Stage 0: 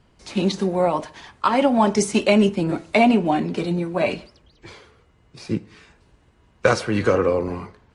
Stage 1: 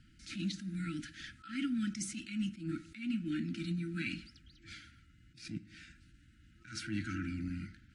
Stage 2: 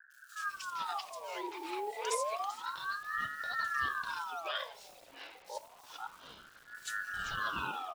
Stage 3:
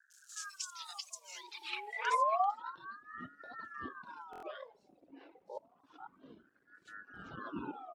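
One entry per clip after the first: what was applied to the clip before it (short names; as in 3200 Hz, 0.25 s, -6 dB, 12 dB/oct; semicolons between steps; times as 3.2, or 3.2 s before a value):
FFT band-reject 340–1300 Hz; compressor 2.5:1, threshold -34 dBFS, peak gain reduction 13.5 dB; attack slew limiter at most 130 dB/s; gain -3.5 dB
bit-crush 10-bit; three bands offset in time lows, highs, mids 0.1/0.49 s, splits 210/4300 Hz; ring modulator with a swept carrier 1100 Hz, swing 45%, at 0.29 Hz; gain +6 dB
reverb removal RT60 1.6 s; band-pass sweep 6700 Hz -> 280 Hz, 1.32–2.93; stuck buffer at 4.31, samples 1024, times 4; gain +11 dB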